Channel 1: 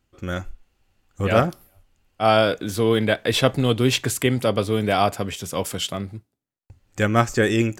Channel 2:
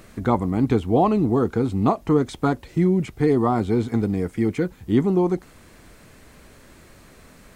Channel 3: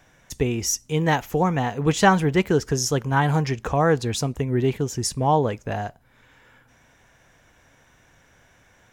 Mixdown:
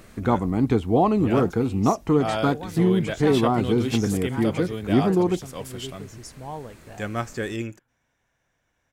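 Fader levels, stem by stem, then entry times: -10.0 dB, -1.0 dB, -16.0 dB; 0.00 s, 0.00 s, 1.20 s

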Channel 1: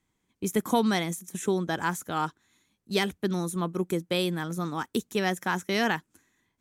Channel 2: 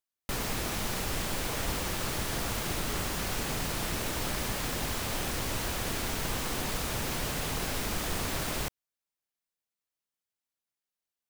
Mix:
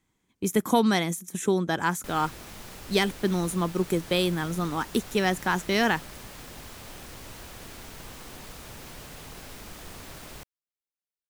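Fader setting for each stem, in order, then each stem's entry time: +2.5 dB, -10.5 dB; 0.00 s, 1.75 s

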